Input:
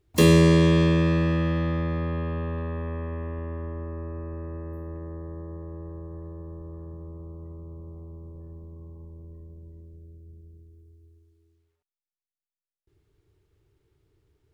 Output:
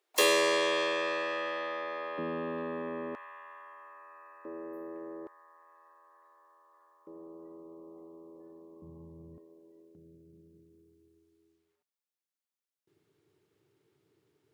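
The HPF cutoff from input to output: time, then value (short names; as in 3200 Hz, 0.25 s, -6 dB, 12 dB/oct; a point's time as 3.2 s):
HPF 24 dB/oct
520 Hz
from 2.18 s 230 Hz
from 3.15 s 920 Hz
from 4.45 s 310 Hz
from 5.27 s 1000 Hz
from 7.07 s 290 Hz
from 8.82 s 120 Hz
from 9.38 s 320 Hz
from 9.95 s 150 Hz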